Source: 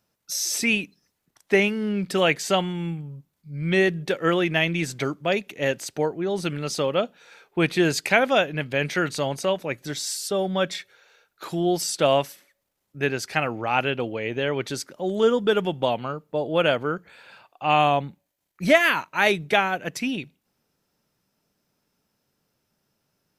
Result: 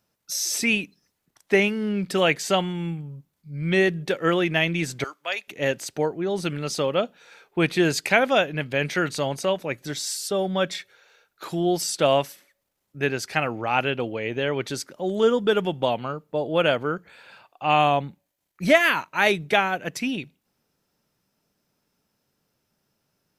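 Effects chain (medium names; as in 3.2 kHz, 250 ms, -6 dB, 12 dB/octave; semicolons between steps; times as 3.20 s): 5.04–5.48 s: high-pass 1 kHz 12 dB/octave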